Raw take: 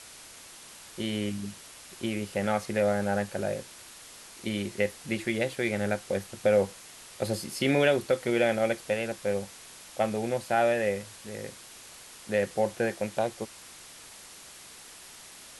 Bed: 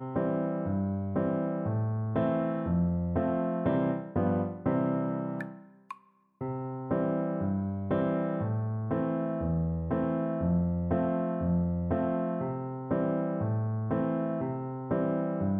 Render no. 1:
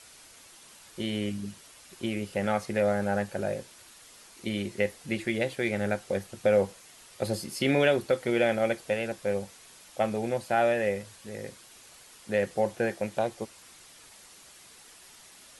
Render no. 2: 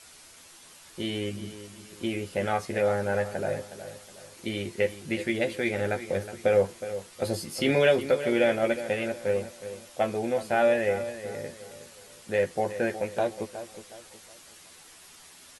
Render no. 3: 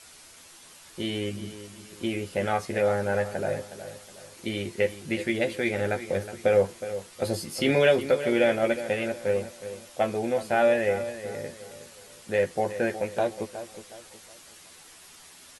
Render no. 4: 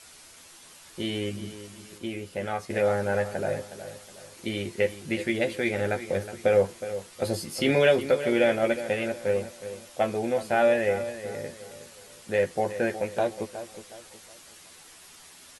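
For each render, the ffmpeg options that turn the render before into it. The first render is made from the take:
-af "afftdn=nr=6:nf=-49"
-filter_complex "[0:a]asplit=2[a][b];[b]adelay=12,volume=-5.5dB[c];[a][c]amix=inputs=2:normalize=0,asplit=2[d][e];[e]adelay=366,lowpass=f=3.5k:p=1,volume=-12dB,asplit=2[f][g];[g]adelay=366,lowpass=f=3.5k:p=1,volume=0.37,asplit=2[h][i];[i]adelay=366,lowpass=f=3.5k:p=1,volume=0.37,asplit=2[j][k];[k]adelay=366,lowpass=f=3.5k:p=1,volume=0.37[l];[d][f][h][j][l]amix=inputs=5:normalize=0"
-af "volume=1dB"
-filter_complex "[0:a]asplit=3[a][b][c];[a]atrim=end=1.982[d];[b]atrim=start=1.978:end=2.702,asetpts=PTS-STARTPTS,volume=-4.5dB[e];[c]atrim=start=2.698[f];[d][e]acrossfade=d=0.004:c1=hsin:c2=hsin[g];[g][f]acrossfade=d=0.004:c1=hsin:c2=hsin"

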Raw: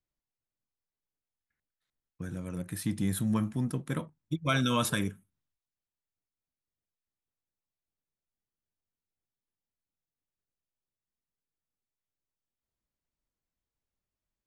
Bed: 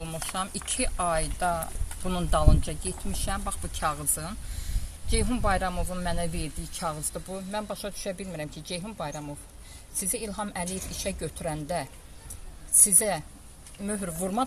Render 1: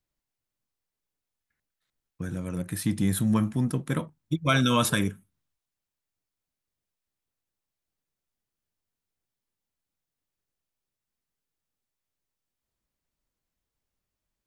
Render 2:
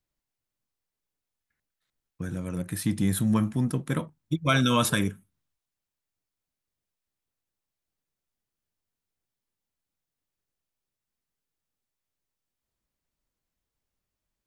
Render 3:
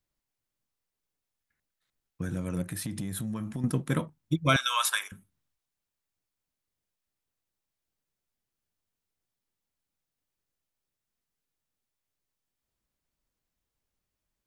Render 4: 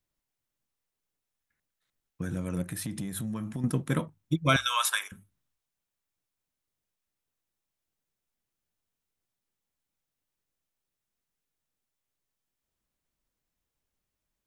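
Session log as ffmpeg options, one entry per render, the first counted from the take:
-af "volume=5dB"
-af anull
-filter_complex "[0:a]asettb=1/sr,asplit=3[a][b][c];[a]atrim=end=2.714[d];[b]atrim=start=2.71:end=3.64,asetpts=PTS-STARTPTS,afade=t=in:d=0.004:c=qsin,afade=t=out:st=0.926:d=0.004:c=qsin,acompressor=threshold=-30dB:ratio=10:attack=3.2:release=140:knee=1:detection=peak[e];[c]atrim=start=3.636[f];[d][e]acrossfade=d=0.004:c1=hsin:c2=qsin[g];[g][f]acrossfade=d=0.004:c1=qsin:c2=hsin,asettb=1/sr,asplit=3[h][i][j];[h]atrim=end=4.564[k];[i]atrim=start=4.56:end=5.12,asetpts=PTS-STARTPTS,afade=t=in:d=0.004:c=qsin,afade=t=out:st=0.556:d=0.004:c=qsin,highpass=f=930:w=0.5412,highpass=f=930:w=1.3066[l];[j]atrim=start=5.116[m];[k][l]acrossfade=d=0.004:c1=hsin:c2=qsin[n];[n][m]acrossfade=d=0.004:c1=qsin:c2=hsin"
-af "equalizer=f=4.6k:w=5.9:g=-2.5,bandreject=f=50:t=h:w=6,bandreject=f=100:t=h:w=6"

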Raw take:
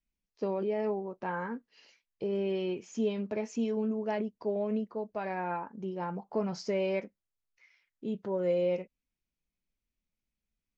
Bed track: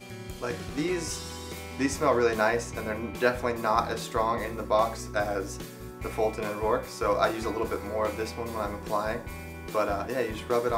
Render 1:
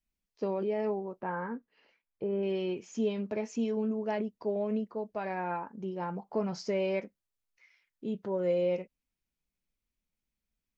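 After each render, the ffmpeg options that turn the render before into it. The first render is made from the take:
-filter_complex "[0:a]asettb=1/sr,asplit=3[a][b][c];[a]atrim=end=1.214[d];[b]atrim=start=1.21:end=2.43,asetpts=PTS-STARTPTS,afade=t=in:d=0.004:c=qsin,afade=t=out:st=1.216:d=0.004:c=qsin,lowpass=1.9k[e];[c]atrim=start=2.426[f];[d][e]acrossfade=d=0.004:c1=hsin:c2=qsin[g];[g][f]acrossfade=d=0.004:c1=qsin:c2=hsin"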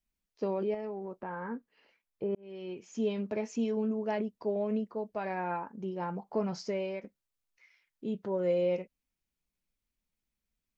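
-filter_complex "[0:a]asettb=1/sr,asplit=3[a][b][c];[a]atrim=end=0.744[d];[b]atrim=start=0.74:end=1.48,asetpts=PTS-STARTPTS,afade=t=in:d=0.004:c=qsin,afade=t=out:st=0.736:d=0.004:c=qsin,acompressor=threshold=-34dB:ratio=6:attack=3.2:release=140:knee=1:detection=peak[e];[c]atrim=start=1.476[f];[d][e]acrossfade=d=0.004:c1=hsin:c2=qsin[g];[g][f]acrossfade=d=0.004:c1=qsin:c2=hsin,asplit=3[h][i][j];[h]atrim=end=2.35,asetpts=PTS-STARTPTS,afade=t=out:st=2.346:d=0.004:c=hsin[k];[i]atrim=start=2.35:end=7.04,asetpts=PTS-STARTPTS,afade=t=in:d=0.77,afade=t=out:st=4.18:d=0.51:silence=0.334965[l];[j]atrim=start=7.04,asetpts=PTS-STARTPTS,afade=t=in:d=0.004:c=hsin:silence=0.334965[m];[k][l][m]concat=n=3:v=0:a=1"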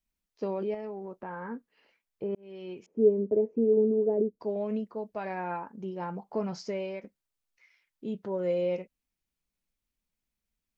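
-filter_complex "[0:a]asettb=1/sr,asplit=3[a][b][c];[a]atrim=end=2.864[d];[b]atrim=start=2.86:end=4.4,asetpts=PTS-STARTPTS,afade=t=in:d=0.004:c=qsin,afade=t=out:st=1.536:d=0.004:c=qsin,lowpass=f=430:t=q:w=3.6[e];[c]atrim=start=4.396[f];[d][e]acrossfade=d=0.004:c1=hsin:c2=qsin[g];[g][f]acrossfade=d=0.004:c1=qsin:c2=hsin"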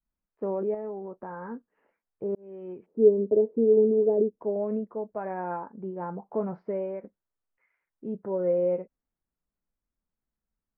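-af "lowpass=f=1.6k:w=0.5412,lowpass=f=1.6k:w=1.3066,adynamicequalizer=threshold=0.0141:dfrequency=480:dqfactor=1:tfrequency=480:tqfactor=1:attack=5:release=100:ratio=0.375:range=2:mode=boostabove:tftype=bell"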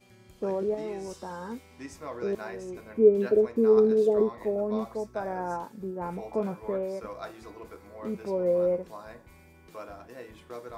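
-filter_complex "[1:a]volume=-15dB[a];[0:a][a]amix=inputs=2:normalize=0"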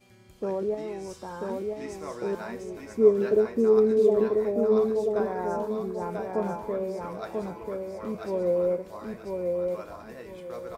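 -af "aecho=1:1:990|1980|2970|3960:0.668|0.174|0.0452|0.0117"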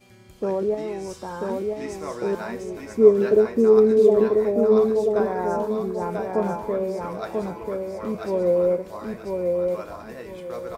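-af "volume=5dB"

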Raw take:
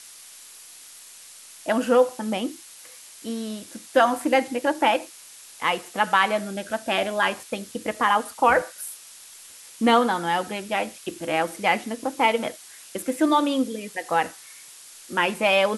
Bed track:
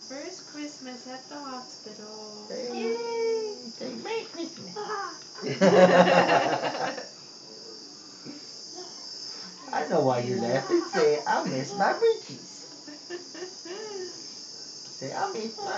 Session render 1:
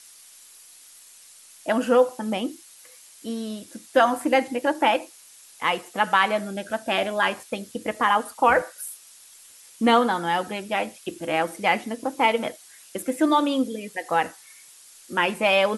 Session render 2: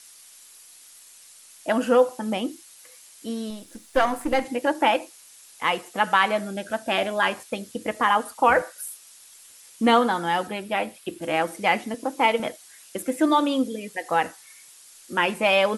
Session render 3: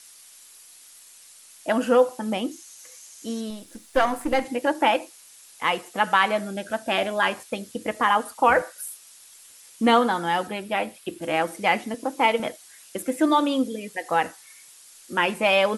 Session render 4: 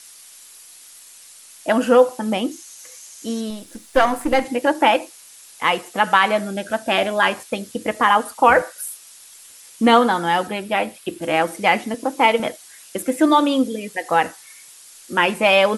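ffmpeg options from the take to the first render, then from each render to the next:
-af "afftdn=nr=6:nf=-46"
-filter_complex "[0:a]asettb=1/sr,asplit=3[a][b][c];[a]atrim=end=3.504[d];[b]atrim=start=3.5:end=4.45,asetpts=PTS-STARTPTS,afade=t=in:d=0.004:c=qsin,afade=t=out:st=0.946:d=0.004:c=qsin,aeval=exprs='if(lt(val(0),0),0.447*val(0),val(0))':c=same[e];[c]atrim=start=4.446[f];[d][e]acrossfade=d=0.004:c1=hsin:c2=qsin[g];[g][f]acrossfade=d=0.004:c1=qsin:c2=hsin,asettb=1/sr,asplit=3[h][i][j];[h]atrim=end=10.474[k];[i]atrim=start=10.47:end=11.22,asetpts=PTS-STARTPTS,afade=t=in:d=0.004:c=qsin,afade=t=out:st=0.746:d=0.004:c=qsin,equalizer=f=6.3k:w=1.7:g=-6.5[l];[j]atrim=start=11.216[m];[k][l]acrossfade=d=0.004:c1=hsin:c2=qsin[n];[n][m]acrossfade=d=0.004:c1=qsin:c2=hsin,asettb=1/sr,asplit=3[o][p][q];[o]atrim=end=11.944[r];[p]atrim=start=11.94:end=12.4,asetpts=PTS-STARTPTS,afade=t=in:d=0.004:c=qsin,afade=t=out:st=0.456:d=0.004:c=qsin,highpass=160[s];[q]atrim=start=12.396[t];[r][s]acrossfade=d=0.004:c1=hsin:c2=qsin[u];[u][t]acrossfade=d=0.004:c1=qsin:c2=hsin"
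-filter_complex "[0:a]asettb=1/sr,asplit=3[a][b][c];[a]atrim=end=2.514[d];[b]atrim=start=2.51:end=3.41,asetpts=PTS-STARTPTS,afade=t=in:d=0.004:c=qsin,afade=t=out:st=0.896:d=0.004:c=qsin,equalizer=f=6.4k:w=3.1:g=9.5[e];[c]atrim=start=3.406[f];[d][e]acrossfade=d=0.004:c1=hsin:c2=qsin[g];[g][f]acrossfade=d=0.004:c1=qsin:c2=hsin"
-af "volume=5dB,alimiter=limit=-2dB:level=0:latency=1"

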